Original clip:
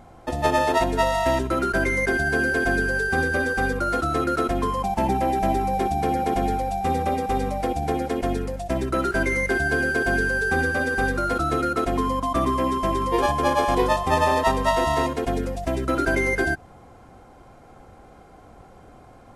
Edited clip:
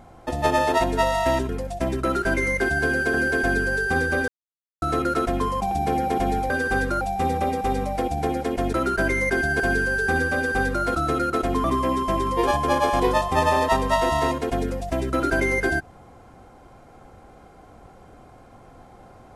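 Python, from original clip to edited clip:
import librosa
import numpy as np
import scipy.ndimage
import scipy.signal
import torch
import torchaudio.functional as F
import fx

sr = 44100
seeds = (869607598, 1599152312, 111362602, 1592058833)

y = fx.edit(x, sr, fx.swap(start_s=1.49, length_s=0.87, other_s=8.38, other_length_s=1.65),
    fx.silence(start_s=3.5, length_s=0.54),
    fx.cut(start_s=4.93, length_s=0.94),
    fx.duplicate(start_s=10.77, length_s=0.51, to_s=6.66),
    fx.cut(start_s=12.07, length_s=0.32), tone=tone)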